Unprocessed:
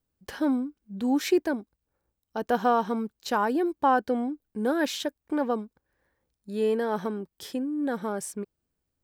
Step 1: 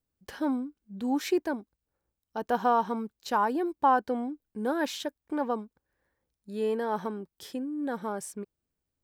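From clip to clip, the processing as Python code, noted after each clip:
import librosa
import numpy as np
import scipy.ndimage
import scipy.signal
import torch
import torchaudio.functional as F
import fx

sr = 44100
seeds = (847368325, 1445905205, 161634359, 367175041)

y = fx.dynamic_eq(x, sr, hz=950.0, q=2.3, threshold_db=-39.0, ratio=4.0, max_db=6)
y = y * 10.0 ** (-4.0 / 20.0)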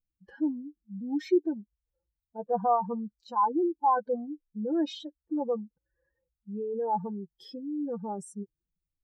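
y = fx.spec_expand(x, sr, power=2.5)
y = y + 0.58 * np.pad(y, (int(5.9 * sr / 1000.0), 0))[:len(y)]
y = fx.hpss(y, sr, part='percussive', gain_db=-12)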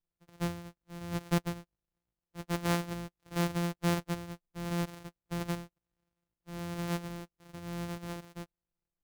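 y = np.r_[np.sort(x[:len(x) // 256 * 256].reshape(-1, 256), axis=1).ravel(), x[len(x) // 256 * 256:]]
y = y * 10.0 ** (-5.5 / 20.0)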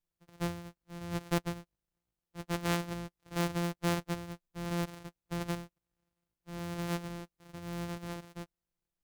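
y = fx.doppler_dist(x, sr, depth_ms=0.86)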